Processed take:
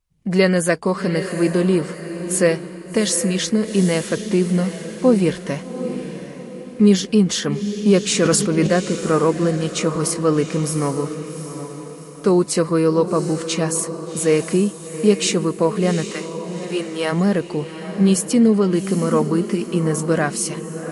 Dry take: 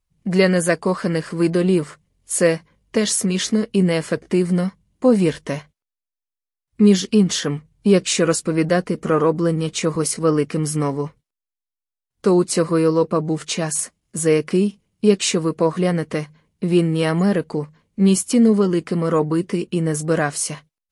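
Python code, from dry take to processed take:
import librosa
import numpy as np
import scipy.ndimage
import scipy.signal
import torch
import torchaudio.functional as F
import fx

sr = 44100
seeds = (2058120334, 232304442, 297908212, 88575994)

y = fx.highpass(x, sr, hz=fx.line((16.09, 1000.0), (17.11, 380.0)), slope=12, at=(16.09, 17.11), fade=0.02)
y = fx.echo_diffused(y, sr, ms=773, feedback_pct=42, wet_db=-10)
y = fx.sustainer(y, sr, db_per_s=44.0, at=(8.02, 8.67))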